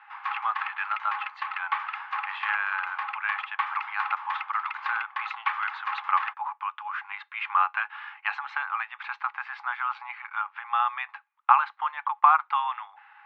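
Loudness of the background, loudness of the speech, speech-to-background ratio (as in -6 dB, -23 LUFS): -33.5 LUFS, -29.0 LUFS, 4.5 dB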